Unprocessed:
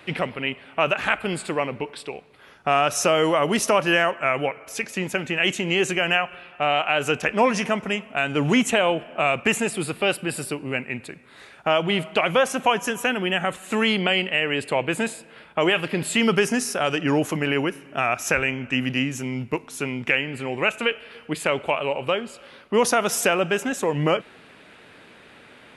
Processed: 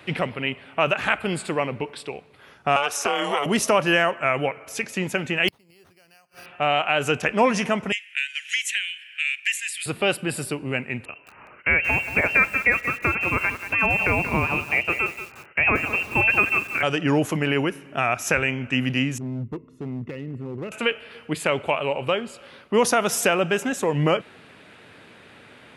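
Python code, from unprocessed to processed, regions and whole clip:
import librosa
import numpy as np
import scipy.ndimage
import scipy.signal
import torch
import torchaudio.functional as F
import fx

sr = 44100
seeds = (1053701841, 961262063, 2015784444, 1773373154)

y = fx.chain(x, sr, fx.highpass(hz=590.0, slope=12),
    fx.ring_mod(carrier_hz=140.0),
    fx.band_squash(depth_pct=100), at=(2.76, 3.46))
y = fx.chain(y, sr, fx.high_shelf_res(hz=6800.0, db=7.0, q=3.0),
    fx.gate_flip(shuts_db=-17.0, range_db=-34),
    fx.resample_bad(factor=6, down='none', up='hold'), at=(5.48, 6.46))
y = fx.chain(y, sr, fx.steep_highpass(hz=1700.0, slope=72),
    fx.band_squash(depth_pct=70), at=(7.92, 9.86))
y = fx.chain(y, sr, fx.freq_invert(carrier_hz=2900),
    fx.echo_crushed(ms=182, feedback_pct=35, bits=6, wet_db=-10.0), at=(11.05, 16.83))
y = fx.chain(y, sr, fx.moving_average(points=56),
    fx.overload_stage(gain_db=27.5), at=(19.18, 20.72))
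y = scipy.signal.sosfilt(scipy.signal.butter(2, 52.0, 'highpass', fs=sr, output='sos'), y)
y = fx.peak_eq(y, sr, hz=100.0, db=5.0, octaves=1.2)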